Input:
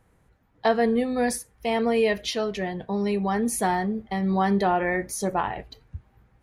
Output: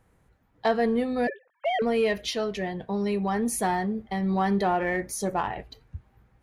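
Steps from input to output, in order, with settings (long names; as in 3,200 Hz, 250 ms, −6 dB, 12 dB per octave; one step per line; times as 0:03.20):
0:01.27–0:01.82: three sine waves on the formant tracks
in parallel at −11 dB: hard clipping −23 dBFS, distortion −9 dB
on the sum: level −3.5 dB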